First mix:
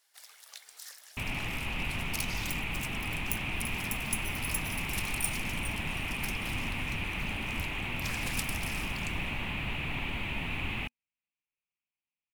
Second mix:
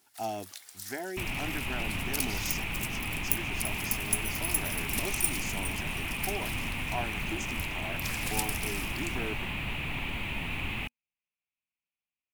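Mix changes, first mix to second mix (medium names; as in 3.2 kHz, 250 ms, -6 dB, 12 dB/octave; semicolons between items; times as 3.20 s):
speech: unmuted; master: add treble shelf 8.6 kHz +8 dB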